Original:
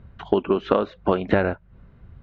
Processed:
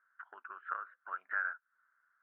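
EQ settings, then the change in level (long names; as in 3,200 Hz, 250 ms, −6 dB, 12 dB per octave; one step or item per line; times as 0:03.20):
flat-topped band-pass 1,500 Hz, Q 3.6
high-frequency loss of the air 430 metres
0.0 dB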